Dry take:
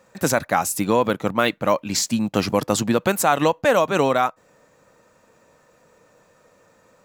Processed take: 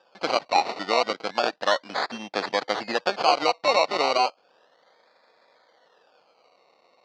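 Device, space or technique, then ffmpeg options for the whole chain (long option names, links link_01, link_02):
circuit-bent sampling toy: -af "acrusher=samples=21:mix=1:aa=0.000001:lfo=1:lforange=12.6:lforate=0.33,highpass=480,equalizer=frequency=750:width_type=q:width=4:gain=6,equalizer=frequency=1800:width_type=q:width=4:gain=3,equalizer=frequency=4500:width_type=q:width=4:gain=8,lowpass=frequency=5200:width=0.5412,lowpass=frequency=5200:width=1.3066,volume=-3.5dB"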